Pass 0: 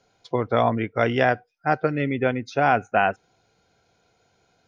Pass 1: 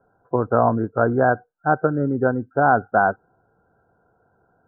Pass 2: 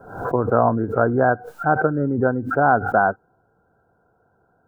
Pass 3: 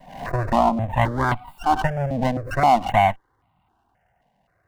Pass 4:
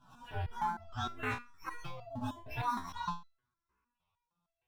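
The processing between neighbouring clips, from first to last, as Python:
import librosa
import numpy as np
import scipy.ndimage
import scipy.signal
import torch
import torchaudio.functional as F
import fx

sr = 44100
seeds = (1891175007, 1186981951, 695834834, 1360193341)

y1 = scipy.signal.sosfilt(scipy.signal.cheby1(8, 1.0, 1600.0, 'lowpass', fs=sr, output='sos'), x)
y1 = F.gain(torch.from_numpy(y1), 3.5).numpy()
y2 = fx.pre_swell(y1, sr, db_per_s=87.0)
y3 = fx.lower_of_two(y2, sr, delay_ms=1.1)
y3 = fx.phaser_held(y3, sr, hz=3.8, low_hz=350.0, high_hz=1700.0)
y3 = F.gain(torch.from_numpy(y3), 1.5).numpy()
y4 = fx.partial_stretch(y3, sr, pct=128)
y4 = fx.resonator_held(y4, sr, hz=6.5, low_hz=62.0, high_hz=670.0)
y4 = F.gain(torch.from_numpy(y4), -3.5).numpy()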